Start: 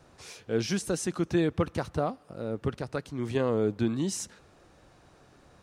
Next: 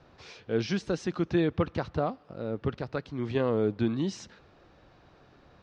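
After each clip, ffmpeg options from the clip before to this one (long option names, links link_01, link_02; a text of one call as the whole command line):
ffmpeg -i in.wav -af "lowpass=frequency=4800:width=0.5412,lowpass=frequency=4800:width=1.3066" out.wav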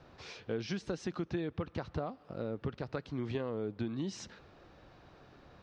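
ffmpeg -i in.wav -af "acompressor=threshold=-33dB:ratio=6" out.wav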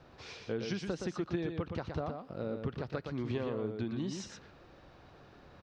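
ffmpeg -i in.wav -af "aecho=1:1:119:0.531" out.wav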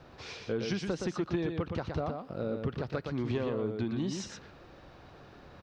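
ffmpeg -i in.wav -af "asoftclip=type=tanh:threshold=-24dB,volume=4dB" out.wav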